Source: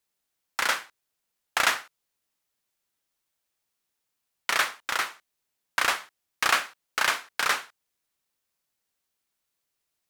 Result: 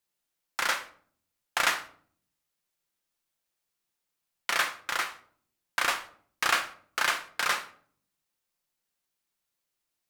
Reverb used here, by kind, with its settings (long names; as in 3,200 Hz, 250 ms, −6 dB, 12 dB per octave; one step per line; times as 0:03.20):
rectangular room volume 710 cubic metres, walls furnished, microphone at 0.86 metres
level −3 dB